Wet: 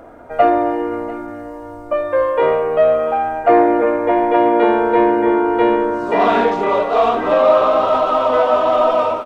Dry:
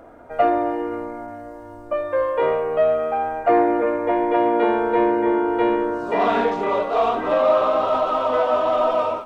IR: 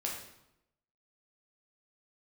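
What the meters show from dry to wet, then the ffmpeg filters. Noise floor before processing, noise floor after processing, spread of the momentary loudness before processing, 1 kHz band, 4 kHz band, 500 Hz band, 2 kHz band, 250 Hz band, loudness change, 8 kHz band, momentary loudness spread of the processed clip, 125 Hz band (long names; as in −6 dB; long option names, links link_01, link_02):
−39 dBFS, −32 dBFS, 10 LU, +5.0 dB, +5.0 dB, +5.0 dB, +5.0 dB, +5.0 dB, +5.0 dB, can't be measured, 10 LU, +4.5 dB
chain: -af "aecho=1:1:693:0.133,volume=5dB"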